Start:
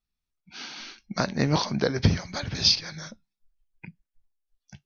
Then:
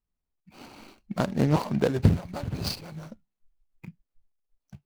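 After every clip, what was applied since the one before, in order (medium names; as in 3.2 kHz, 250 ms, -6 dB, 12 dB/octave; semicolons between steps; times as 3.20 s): median filter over 25 samples; trim +1.5 dB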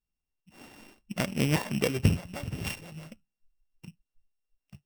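sorted samples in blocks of 16 samples; trim -3.5 dB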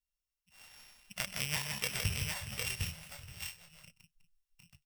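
amplifier tone stack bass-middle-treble 10-0-10; on a send: multi-tap echo 127/162/364/756/779 ms -17.5/-5/-18/-4/-9.5 dB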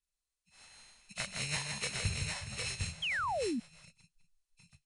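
knee-point frequency compression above 2.3 kHz 1.5:1; painted sound fall, 3.02–3.60 s, 210–3400 Hz -34 dBFS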